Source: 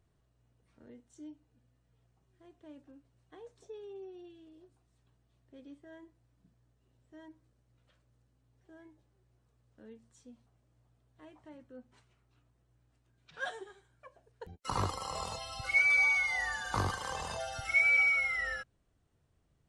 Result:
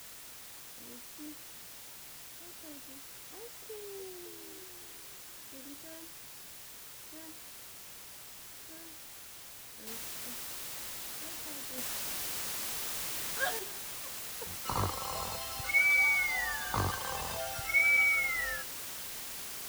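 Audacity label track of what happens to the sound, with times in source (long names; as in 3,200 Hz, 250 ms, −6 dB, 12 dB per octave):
1.260000	2.560000	Butterworth low-pass 1,800 Hz
3.420000	4.490000	delay throw 560 ms, feedback 25%, level −10.5 dB
9.870000	9.870000	noise floor change −49 dB −42 dB
11.780000	13.590000	clip gain +4.5 dB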